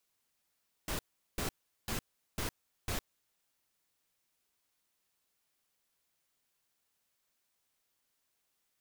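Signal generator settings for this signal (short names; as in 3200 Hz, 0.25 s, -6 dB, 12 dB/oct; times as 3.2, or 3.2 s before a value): noise bursts pink, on 0.11 s, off 0.39 s, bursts 5, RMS -35.5 dBFS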